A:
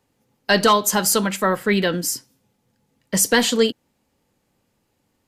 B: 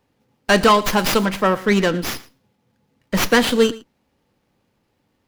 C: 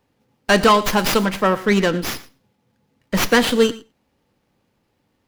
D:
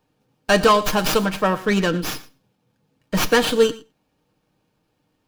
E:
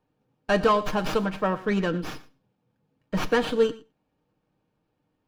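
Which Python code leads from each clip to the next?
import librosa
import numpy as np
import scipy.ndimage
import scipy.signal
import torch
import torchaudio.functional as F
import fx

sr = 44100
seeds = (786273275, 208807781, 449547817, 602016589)

y1 = x + 10.0 ** (-20.0 / 20.0) * np.pad(x, (int(114 * sr / 1000.0), 0))[:len(x)]
y1 = fx.running_max(y1, sr, window=5)
y1 = y1 * 10.0 ** (2.0 / 20.0)
y2 = y1 + 10.0 ** (-22.0 / 20.0) * np.pad(y1, (int(95 * sr / 1000.0), 0))[:len(y1)]
y3 = fx.notch(y2, sr, hz=2000.0, q=10.0)
y3 = y3 + 0.38 * np.pad(y3, (int(6.5 * sr / 1000.0), 0))[:len(y3)]
y3 = y3 * 10.0 ** (-2.0 / 20.0)
y4 = fx.lowpass(y3, sr, hz=1900.0, slope=6)
y4 = y4 * 10.0 ** (-5.0 / 20.0)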